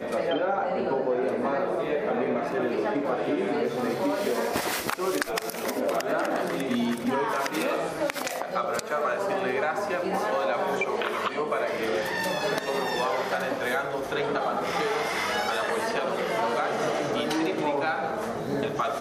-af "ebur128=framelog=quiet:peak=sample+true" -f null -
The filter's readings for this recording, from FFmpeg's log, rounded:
Integrated loudness:
  I:         -27.4 LUFS
  Threshold: -37.4 LUFS
Loudness range:
  LRA:         0.7 LU
  Threshold: -47.4 LUFS
  LRA low:   -27.7 LUFS
  LRA high:  -27.0 LUFS
Sample peak:
  Peak:       -9.0 dBFS
True peak:
  Peak:       -8.7 dBFS